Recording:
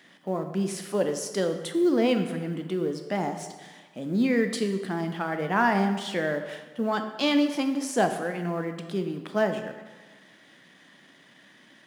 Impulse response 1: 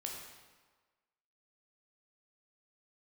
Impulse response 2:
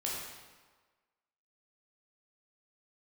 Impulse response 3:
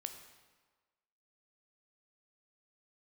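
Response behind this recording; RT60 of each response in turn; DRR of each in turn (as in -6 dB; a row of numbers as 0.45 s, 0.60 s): 3; 1.4 s, 1.4 s, 1.4 s; -1.0 dB, -5.0 dB, 6.0 dB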